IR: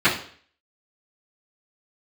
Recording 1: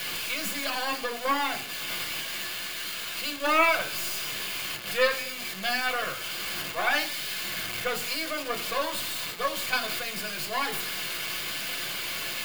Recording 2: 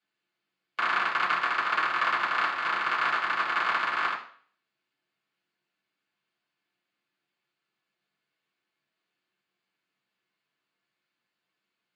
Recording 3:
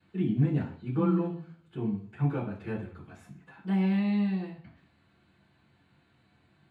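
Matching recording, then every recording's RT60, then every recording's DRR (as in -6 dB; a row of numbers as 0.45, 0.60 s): 3; 0.50, 0.50, 0.50 s; 2.5, -7.0, -16.5 dB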